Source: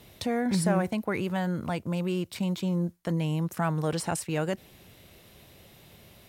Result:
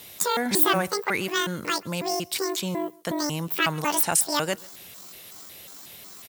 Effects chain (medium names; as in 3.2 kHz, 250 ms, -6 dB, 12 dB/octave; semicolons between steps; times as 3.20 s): pitch shift switched off and on +11.5 st, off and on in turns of 183 ms; tilt EQ +3 dB/octave; echo from a far wall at 23 m, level -24 dB; trim +5 dB